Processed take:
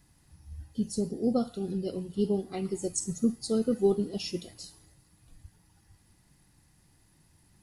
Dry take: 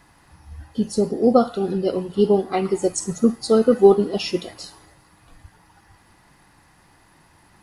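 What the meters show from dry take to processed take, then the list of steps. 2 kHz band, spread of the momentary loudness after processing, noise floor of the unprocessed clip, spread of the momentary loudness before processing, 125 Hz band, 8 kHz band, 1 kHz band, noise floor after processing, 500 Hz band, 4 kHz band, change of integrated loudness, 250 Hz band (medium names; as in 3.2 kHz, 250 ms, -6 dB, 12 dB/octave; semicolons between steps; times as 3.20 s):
-15.0 dB, 16 LU, -56 dBFS, 13 LU, -7.0 dB, -5.0 dB, -18.0 dB, -65 dBFS, -13.0 dB, -9.0 dB, -11.0 dB, -8.5 dB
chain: FFT filter 140 Hz 0 dB, 1.1 kHz -16 dB, 7.5 kHz 0 dB; trim -4.5 dB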